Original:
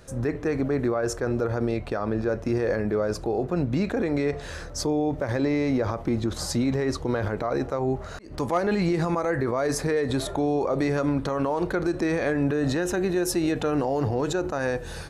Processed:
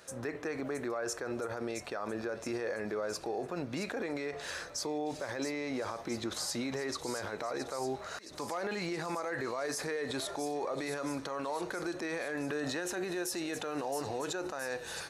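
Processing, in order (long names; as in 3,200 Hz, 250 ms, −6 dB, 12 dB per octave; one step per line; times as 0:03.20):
high-pass filter 830 Hz 6 dB per octave
brickwall limiter −27 dBFS, peak gain reduction 11.5 dB
on a send: delay with a high-pass on its return 670 ms, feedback 68%, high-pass 4,400 Hz, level −6.5 dB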